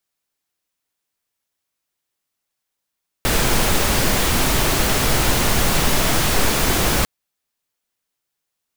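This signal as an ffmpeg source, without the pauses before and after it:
-f lavfi -i "anoisesrc=c=pink:a=0.724:d=3.8:r=44100:seed=1"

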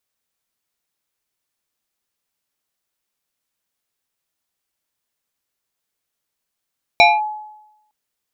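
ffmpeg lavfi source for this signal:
-f lavfi -i "aevalsrc='0.596*pow(10,-3*t/0.91)*sin(2*PI*851*t+1.8*clip(1-t/0.21,0,1)*sin(2*PI*1.82*851*t))':d=0.91:s=44100"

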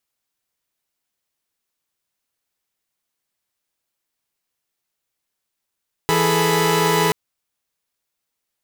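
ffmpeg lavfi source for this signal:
-f lavfi -i "aevalsrc='0.119*((2*mod(164.81*t,1)-1)+(2*mod(415.3*t,1)-1)+(2*mod(440*t,1)-1)+(2*mod(987.77*t,1)-1))':d=1.03:s=44100"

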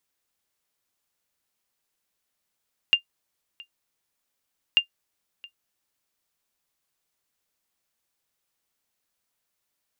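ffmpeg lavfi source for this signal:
-f lavfi -i "aevalsrc='0.376*(sin(2*PI*2800*mod(t,1.84))*exp(-6.91*mod(t,1.84)/0.1)+0.0596*sin(2*PI*2800*max(mod(t,1.84)-0.67,0))*exp(-6.91*max(mod(t,1.84)-0.67,0)/0.1))':d=3.68:s=44100"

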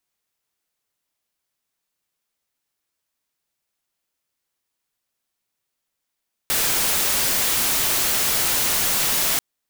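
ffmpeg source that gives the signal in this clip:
-f lavfi -i "anoisesrc=c=white:a=0.163:d=2.89:r=44100:seed=1"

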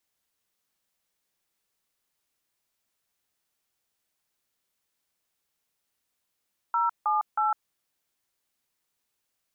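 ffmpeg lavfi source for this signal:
-f lavfi -i "aevalsrc='0.0596*clip(min(mod(t,0.317),0.155-mod(t,0.317))/0.002,0,1)*(eq(floor(t/0.317),0)*(sin(2*PI*941*mod(t,0.317))+sin(2*PI*1336*mod(t,0.317)))+eq(floor(t/0.317),1)*(sin(2*PI*852*mod(t,0.317))+sin(2*PI*1209*mod(t,0.317)))+eq(floor(t/0.317),2)*(sin(2*PI*852*mod(t,0.317))+sin(2*PI*1336*mod(t,0.317))))':d=0.951:s=44100"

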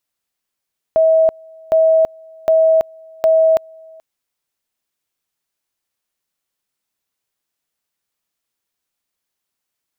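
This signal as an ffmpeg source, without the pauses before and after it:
-f lavfi -i "aevalsrc='pow(10,(-8.5-28.5*gte(mod(t,0.76),0.33))/20)*sin(2*PI*644*t)':d=3.04:s=44100"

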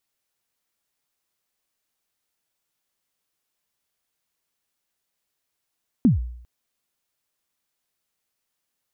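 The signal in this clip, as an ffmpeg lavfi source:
-f lavfi -i "aevalsrc='0.316*pow(10,-3*t/0.68)*sin(2*PI*(280*0.14/log(60/280)*(exp(log(60/280)*min(t,0.14)/0.14)-1)+60*max(t-0.14,0)))':d=0.4:s=44100"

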